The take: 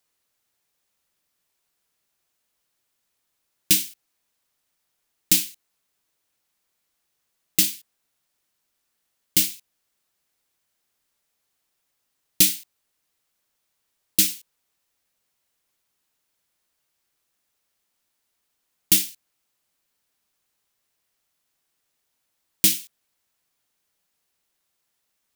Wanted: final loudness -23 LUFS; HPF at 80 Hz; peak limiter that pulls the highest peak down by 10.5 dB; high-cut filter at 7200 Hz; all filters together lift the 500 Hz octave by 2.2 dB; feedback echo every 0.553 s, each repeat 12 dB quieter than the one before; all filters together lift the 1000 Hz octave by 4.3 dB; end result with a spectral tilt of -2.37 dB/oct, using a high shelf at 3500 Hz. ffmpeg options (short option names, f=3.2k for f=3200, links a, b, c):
-af "highpass=80,lowpass=7.2k,equalizer=f=500:t=o:g=3,equalizer=f=1k:t=o:g=6,highshelf=f=3.5k:g=-5,alimiter=limit=-18dB:level=0:latency=1,aecho=1:1:553|1106|1659:0.251|0.0628|0.0157,volume=13.5dB"